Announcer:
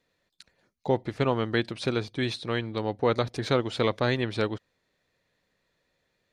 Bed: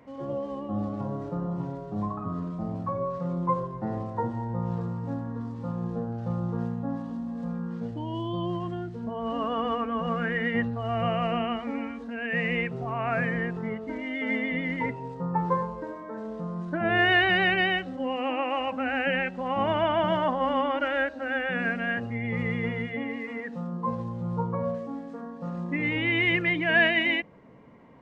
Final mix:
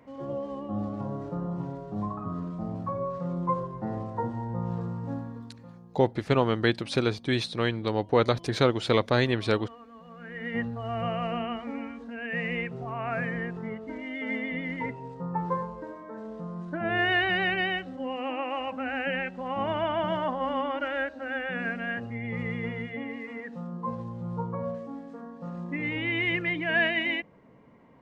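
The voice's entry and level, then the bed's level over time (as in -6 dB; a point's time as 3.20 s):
5.10 s, +2.0 dB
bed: 5.18 s -1.5 dB
5.87 s -20 dB
10.10 s -20 dB
10.57 s -3.5 dB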